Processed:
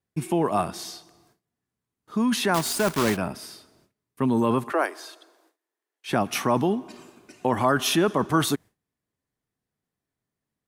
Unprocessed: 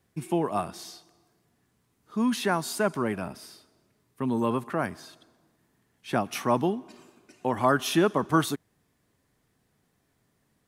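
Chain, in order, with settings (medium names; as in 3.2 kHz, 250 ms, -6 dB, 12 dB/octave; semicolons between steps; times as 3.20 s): 2.54–3.18 s: block-companded coder 3-bit; gate with hold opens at -56 dBFS; 4.72–6.10 s: steep high-pass 320 Hz 48 dB/octave; in parallel at -3 dB: compressor with a negative ratio -27 dBFS, ratio -0.5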